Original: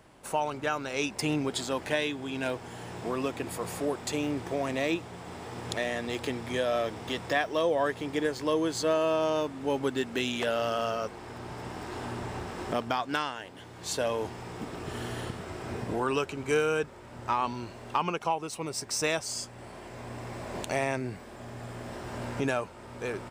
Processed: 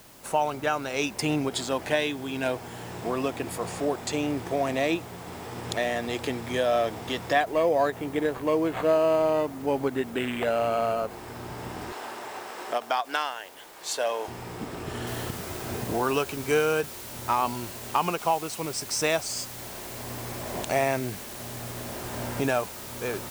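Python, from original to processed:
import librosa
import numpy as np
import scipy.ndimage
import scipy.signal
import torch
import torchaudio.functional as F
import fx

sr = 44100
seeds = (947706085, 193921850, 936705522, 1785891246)

y = fx.lowpass(x, sr, hz=9400.0, slope=24, at=(3.58, 4.27))
y = fx.resample_linear(y, sr, factor=8, at=(7.4, 11.11))
y = fx.highpass(y, sr, hz=510.0, slope=12, at=(11.92, 14.28))
y = fx.noise_floor_step(y, sr, seeds[0], at_s=15.07, before_db=-56, after_db=-44, tilt_db=0.0)
y = fx.dynamic_eq(y, sr, hz=700.0, q=4.0, threshold_db=-44.0, ratio=4.0, max_db=5)
y = fx.end_taper(y, sr, db_per_s=390.0)
y = F.gain(torch.from_numpy(y), 2.5).numpy()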